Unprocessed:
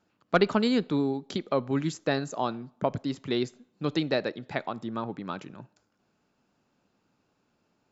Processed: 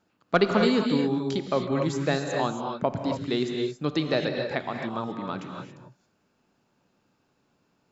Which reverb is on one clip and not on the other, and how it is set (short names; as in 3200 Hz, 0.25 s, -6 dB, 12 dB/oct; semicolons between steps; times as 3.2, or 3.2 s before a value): non-linear reverb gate 0.3 s rising, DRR 3 dB; gain +1 dB